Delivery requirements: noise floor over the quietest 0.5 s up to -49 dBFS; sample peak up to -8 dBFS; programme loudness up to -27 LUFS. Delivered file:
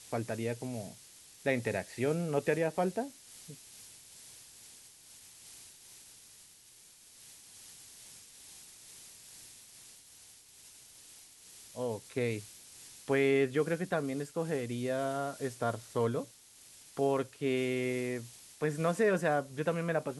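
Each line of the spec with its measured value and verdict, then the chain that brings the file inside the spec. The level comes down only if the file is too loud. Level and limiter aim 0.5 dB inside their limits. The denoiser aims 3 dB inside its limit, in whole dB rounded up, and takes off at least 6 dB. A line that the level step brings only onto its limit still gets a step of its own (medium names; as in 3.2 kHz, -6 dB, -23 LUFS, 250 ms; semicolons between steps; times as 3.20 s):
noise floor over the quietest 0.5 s -58 dBFS: pass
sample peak -15.5 dBFS: pass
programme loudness -33.5 LUFS: pass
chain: none needed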